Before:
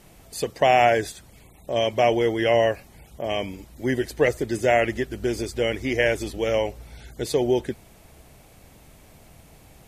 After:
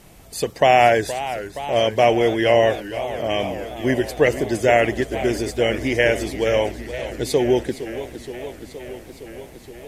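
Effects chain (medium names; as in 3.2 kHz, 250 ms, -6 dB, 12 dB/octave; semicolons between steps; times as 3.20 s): modulated delay 468 ms, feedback 74%, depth 183 cents, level -13 dB; trim +3.5 dB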